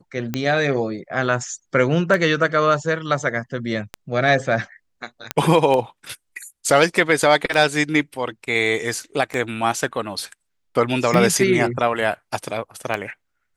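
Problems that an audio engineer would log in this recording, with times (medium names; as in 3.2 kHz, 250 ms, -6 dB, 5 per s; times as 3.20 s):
tick 33 1/3 rpm -10 dBFS
5.31 s: pop -5 dBFS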